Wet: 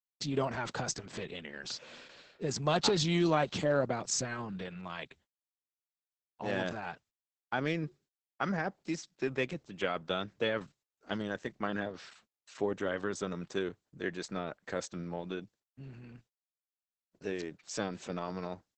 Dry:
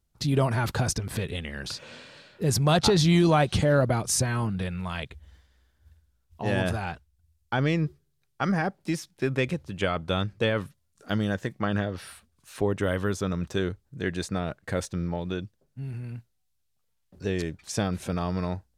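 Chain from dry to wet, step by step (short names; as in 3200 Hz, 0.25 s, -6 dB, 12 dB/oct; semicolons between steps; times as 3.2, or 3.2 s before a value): Bessel high-pass 210 Hz, order 4; gate -55 dBFS, range -38 dB; gain -5 dB; Opus 10 kbps 48000 Hz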